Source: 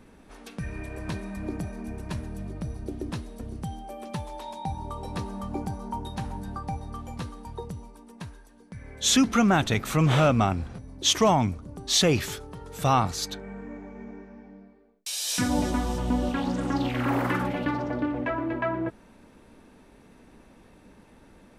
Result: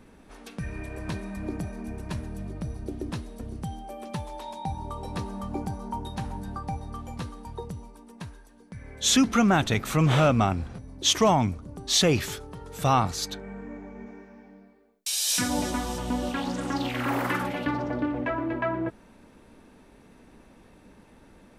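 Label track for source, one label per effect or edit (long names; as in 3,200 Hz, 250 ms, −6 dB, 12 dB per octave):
14.060000	17.670000	spectral tilt +1.5 dB per octave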